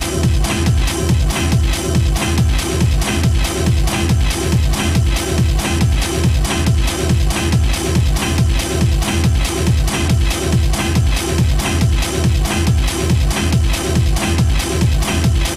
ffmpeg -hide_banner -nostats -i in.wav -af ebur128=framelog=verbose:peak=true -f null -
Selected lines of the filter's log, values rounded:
Integrated loudness:
  I:         -15.9 LUFS
  Threshold: -25.9 LUFS
Loudness range:
  LRA:         0.1 LU
  Threshold: -35.9 LUFS
  LRA low:   -16.0 LUFS
  LRA high:  -15.9 LUFS
True peak:
  Peak:       -2.5 dBFS